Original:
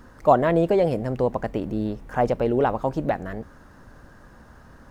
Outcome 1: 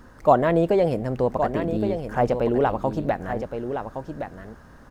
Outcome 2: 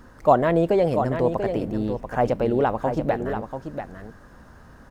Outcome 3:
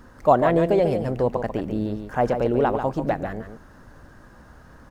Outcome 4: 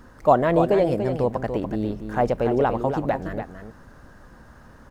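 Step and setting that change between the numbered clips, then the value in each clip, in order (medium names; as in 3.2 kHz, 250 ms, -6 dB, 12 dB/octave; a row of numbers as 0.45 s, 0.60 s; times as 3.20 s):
delay, time: 1117 ms, 688 ms, 142 ms, 289 ms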